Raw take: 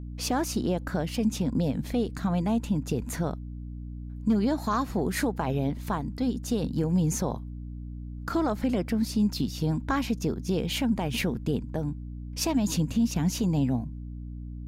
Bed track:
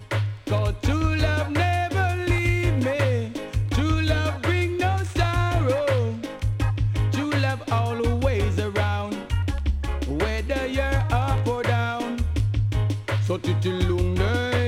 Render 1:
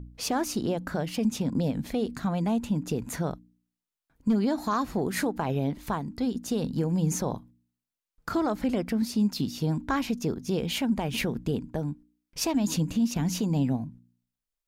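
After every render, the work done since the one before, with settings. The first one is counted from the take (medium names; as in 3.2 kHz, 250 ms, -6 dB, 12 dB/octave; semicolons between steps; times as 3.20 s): de-hum 60 Hz, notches 5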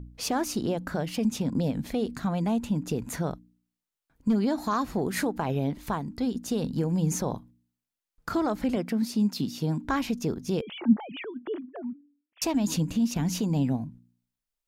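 8.76–9.85 s: Chebyshev high-pass 150 Hz; 10.61–12.42 s: formants replaced by sine waves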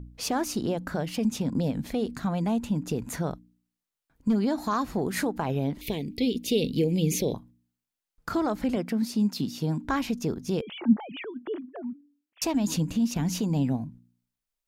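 5.81–7.34 s: FFT filter 210 Hz 0 dB, 450 Hz +8 dB, 1.4 kHz -29 dB, 2.2 kHz +12 dB, 3.5 kHz +12 dB, 5 kHz +5 dB, 7.5 kHz -1 dB, 13 kHz +8 dB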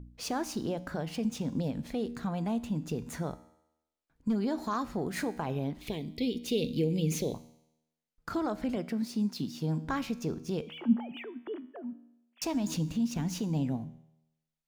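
median filter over 3 samples; feedback comb 79 Hz, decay 0.89 s, harmonics all, mix 50%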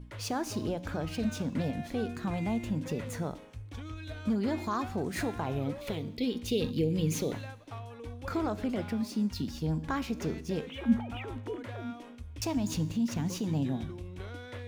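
add bed track -20 dB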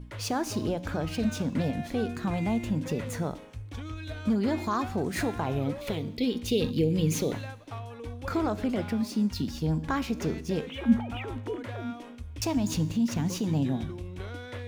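trim +3.5 dB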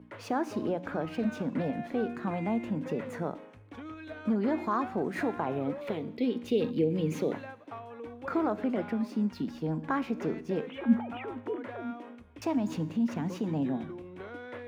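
three-band isolator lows -23 dB, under 170 Hz, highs -16 dB, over 2.4 kHz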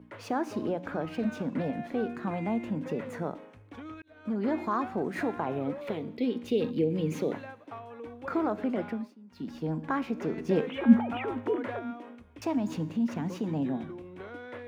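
4.02–4.48 s: fade in; 8.87–9.55 s: dip -23 dB, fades 0.28 s; 10.38–11.79 s: gain +5.5 dB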